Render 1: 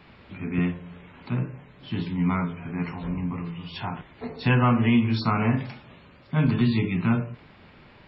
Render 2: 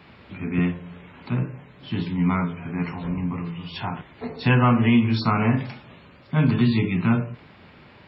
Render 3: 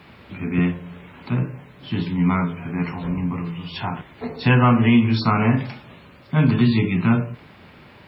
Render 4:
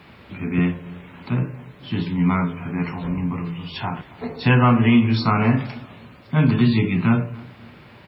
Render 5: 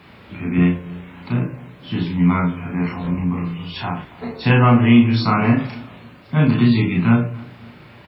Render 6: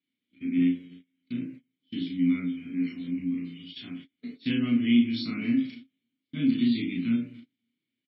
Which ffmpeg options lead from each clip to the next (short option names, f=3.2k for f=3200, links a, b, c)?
-af "highpass=57,volume=2.5dB"
-af "acrusher=bits=11:mix=0:aa=0.000001,volume=2.5dB"
-filter_complex "[0:a]asplit=2[a][b];[b]adelay=275,lowpass=f=2k:p=1,volume=-21dB,asplit=2[c][d];[d]adelay=275,lowpass=f=2k:p=1,volume=0.43,asplit=2[e][f];[f]adelay=275,lowpass=f=2k:p=1,volume=0.43[g];[a][c][e][g]amix=inputs=4:normalize=0"
-filter_complex "[0:a]asplit=2[a][b];[b]adelay=34,volume=-2.5dB[c];[a][c]amix=inputs=2:normalize=0"
-filter_complex "[0:a]agate=range=-29dB:threshold=-30dB:ratio=16:detection=peak,asplit=3[a][b][c];[a]bandpass=f=270:t=q:w=8,volume=0dB[d];[b]bandpass=f=2.29k:t=q:w=8,volume=-6dB[e];[c]bandpass=f=3.01k:t=q:w=8,volume=-9dB[f];[d][e][f]amix=inputs=3:normalize=0,aexciter=amount=5.3:drive=3.6:freq=3.4k,volume=-1.5dB"